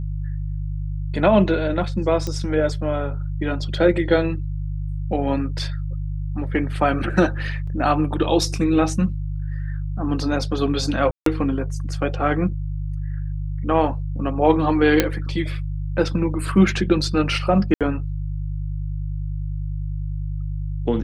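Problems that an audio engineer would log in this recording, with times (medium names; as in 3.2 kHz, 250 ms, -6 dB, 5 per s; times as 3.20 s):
hum 50 Hz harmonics 3 -26 dBFS
2.27 s: pop -14 dBFS
7.67 s: dropout 4.4 ms
11.11–11.26 s: dropout 153 ms
15.00 s: pop -1 dBFS
17.74–17.81 s: dropout 67 ms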